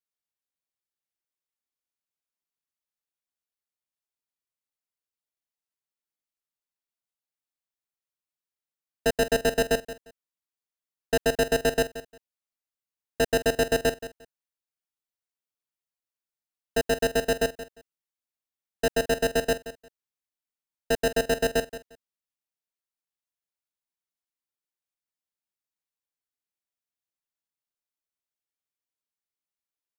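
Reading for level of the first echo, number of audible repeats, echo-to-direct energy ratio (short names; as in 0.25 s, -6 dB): -14.0 dB, 2, -14.0 dB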